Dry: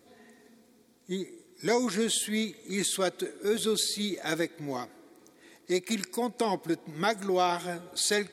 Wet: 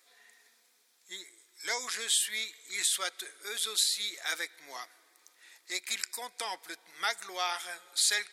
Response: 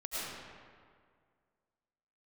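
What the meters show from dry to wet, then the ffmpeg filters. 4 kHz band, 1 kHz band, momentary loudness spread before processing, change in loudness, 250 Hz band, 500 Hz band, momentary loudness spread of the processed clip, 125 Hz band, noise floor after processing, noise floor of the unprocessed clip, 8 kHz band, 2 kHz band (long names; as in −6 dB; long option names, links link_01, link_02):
+2.0 dB, −6.5 dB, 10 LU, −1.5 dB, −25.5 dB, −16.5 dB, 17 LU, below −30 dB, −68 dBFS, −61 dBFS, +2.0 dB, +0.5 dB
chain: -af "highpass=1400,volume=2dB"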